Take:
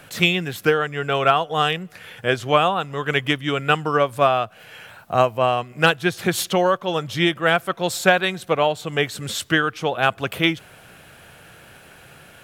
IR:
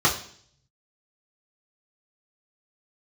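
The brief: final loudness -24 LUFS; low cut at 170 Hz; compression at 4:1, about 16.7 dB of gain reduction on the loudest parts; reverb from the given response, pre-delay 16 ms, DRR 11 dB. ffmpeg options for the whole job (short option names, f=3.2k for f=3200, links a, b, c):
-filter_complex "[0:a]highpass=170,acompressor=threshold=-32dB:ratio=4,asplit=2[a][b];[1:a]atrim=start_sample=2205,adelay=16[c];[b][c]afir=irnorm=-1:irlink=0,volume=-28dB[d];[a][d]amix=inputs=2:normalize=0,volume=10dB"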